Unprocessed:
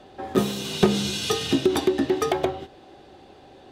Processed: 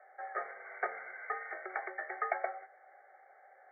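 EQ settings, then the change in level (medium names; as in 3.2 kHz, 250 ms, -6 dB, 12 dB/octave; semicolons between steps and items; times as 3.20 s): high-pass 740 Hz 24 dB/octave; brick-wall FIR low-pass 2.3 kHz; static phaser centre 990 Hz, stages 6; -1.5 dB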